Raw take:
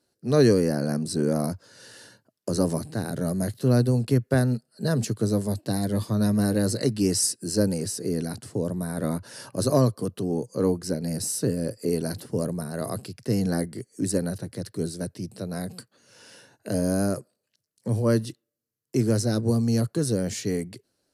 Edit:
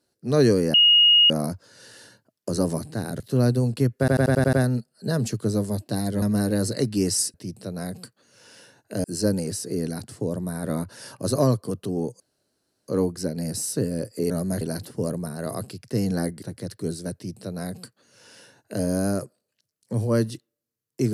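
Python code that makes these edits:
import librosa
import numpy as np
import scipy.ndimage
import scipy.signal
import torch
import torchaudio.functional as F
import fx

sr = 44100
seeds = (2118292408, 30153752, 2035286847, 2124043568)

y = fx.edit(x, sr, fx.bleep(start_s=0.74, length_s=0.56, hz=2870.0, db=-12.0),
    fx.move(start_s=3.2, length_s=0.31, to_s=11.96),
    fx.stutter(start_s=4.3, slice_s=0.09, count=7),
    fx.cut(start_s=5.99, length_s=0.27),
    fx.insert_room_tone(at_s=10.54, length_s=0.68),
    fx.cut(start_s=13.77, length_s=0.6),
    fx.duplicate(start_s=15.09, length_s=1.7, to_s=7.38), tone=tone)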